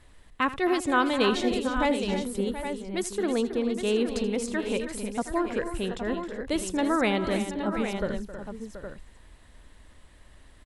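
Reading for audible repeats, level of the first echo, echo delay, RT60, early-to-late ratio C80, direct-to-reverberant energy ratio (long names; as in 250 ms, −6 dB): 5, −16.0 dB, 80 ms, no reverb audible, no reverb audible, no reverb audible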